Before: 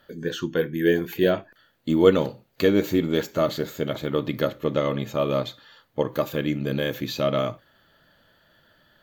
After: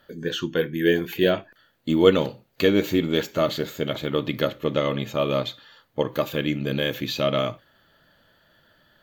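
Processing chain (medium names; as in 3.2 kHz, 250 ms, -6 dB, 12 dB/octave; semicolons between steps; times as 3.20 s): dynamic bell 2.9 kHz, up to +6 dB, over -47 dBFS, Q 1.4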